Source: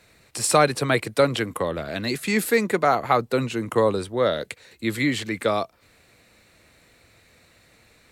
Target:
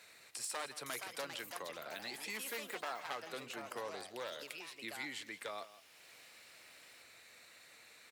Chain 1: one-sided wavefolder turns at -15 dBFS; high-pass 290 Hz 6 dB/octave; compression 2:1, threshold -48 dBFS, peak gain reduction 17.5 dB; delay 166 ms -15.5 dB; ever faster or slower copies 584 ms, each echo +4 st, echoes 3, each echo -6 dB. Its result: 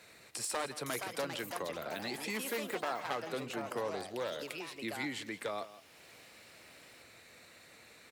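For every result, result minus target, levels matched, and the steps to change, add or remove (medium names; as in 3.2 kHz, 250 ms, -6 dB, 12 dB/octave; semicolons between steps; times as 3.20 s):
250 Hz band +6.0 dB; compression: peak gain reduction -2 dB
change: high-pass 1.1 kHz 6 dB/octave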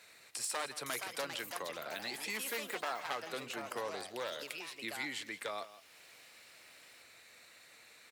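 compression: peak gain reduction -3.5 dB
change: compression 2:1, threshold -55.5 dBFS, peak gain reduction 20 dB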